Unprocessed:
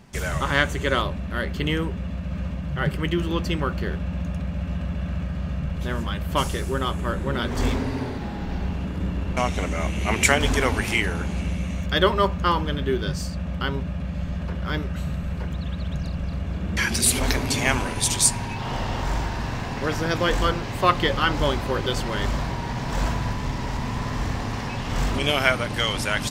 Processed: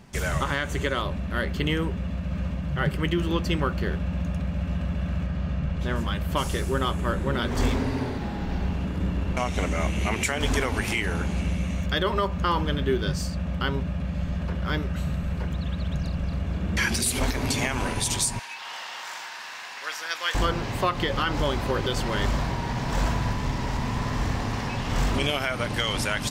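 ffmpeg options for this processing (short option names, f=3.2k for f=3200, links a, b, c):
-filter_complex "[0:a]asettb=1/sr,asplit=3[a][b][c];[a]atrim=end=5.264[d];[b]atrim=start=5.26:end=5.96,asetpts=PTS-STARTPTS,afade=t=in:d=0.004:c=qsin,afade=t=out:st=0.696:d=0.004:c=qsin,equalizer=f=13k:w=0.7:g=-10[e];[c]atrim=start=5.956[f];[d][e]acrossfade=d=0.004:c1=hsin:c2=qsin[g];[g][f]acrossfade=d=0.004:c1=qsin:c2=hsin,asettb=1/sr,asplit=3[h][i][j];[h]atrim=end=18.394[k];[i]atrim=start=18.39:end=20.35,asetpts=PTS-STARTPTS,afade=t=in:d=0.004:c=qsin,afade=t=out:st=1.956:d=0.004:c=qsin,highpass=1.4k[l];[j]atrim=start=20.346[m];[k][l]acrossfade=d=0.004:c1=hsin:c2=qsin[n];[n][m]acrossfade=d=0.004:c1=qsin:c2=hsin,alimiter=limit=-13.5dB:level=0:latency=1:release=143"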